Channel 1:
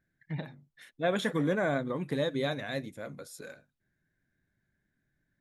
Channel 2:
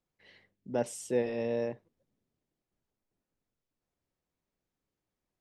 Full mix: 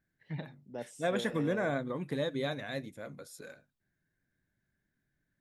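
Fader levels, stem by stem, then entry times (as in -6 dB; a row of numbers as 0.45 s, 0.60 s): -3.0 dB, -10.5 dB; 0.00 s, 0.00 s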